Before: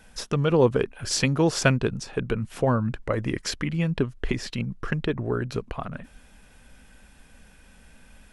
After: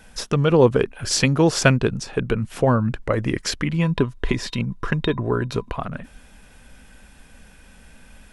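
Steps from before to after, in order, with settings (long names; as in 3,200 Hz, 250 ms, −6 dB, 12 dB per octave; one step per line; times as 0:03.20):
0:03.69–0:05.76: hollow resonant body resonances 1,000/3,700 Hz, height 16 dB, ringing for 100 ms
level +4.5 dB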